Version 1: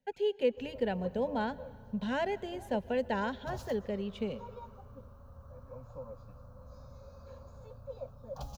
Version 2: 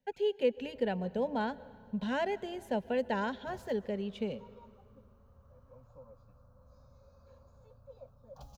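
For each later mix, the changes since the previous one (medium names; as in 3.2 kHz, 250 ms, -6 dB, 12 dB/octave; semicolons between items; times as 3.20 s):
background -9.0 dB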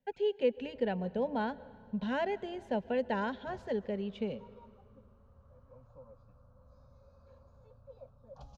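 master: add distance through air 100 m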